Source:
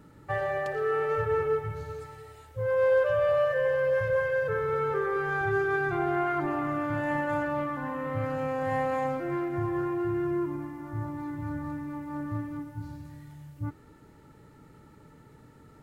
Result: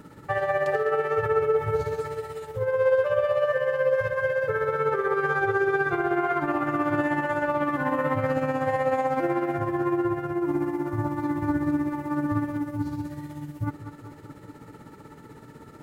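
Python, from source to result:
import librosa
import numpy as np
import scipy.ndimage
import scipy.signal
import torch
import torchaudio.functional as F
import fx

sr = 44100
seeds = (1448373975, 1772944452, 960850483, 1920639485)

p1 = fx.low_shelf(x, sr, hz=98.0, db=-9.5)
p2 = fx.over_compress(p1, sr, threshold_db=-33.0, ratio=-0.5)
p3 = p1 + (p2 * librosa.db_to_amplitude(-2.0))
p4 = fx.echo_tape(p3, sr, ms=204, feedback_pct=85, wet_db=-7, lp_hz=1500.0, drive_db=15.0, wow_cents=8)
p5 = p4 * (1.0 - 0.53 / 2.0 + 0.53 / 2.0 * np.cos(2.0 * np.pi * 16.0 * (np.arange(len(p4)) / sr)))
y = p5 * librosa.db_to_amplitude(3.0)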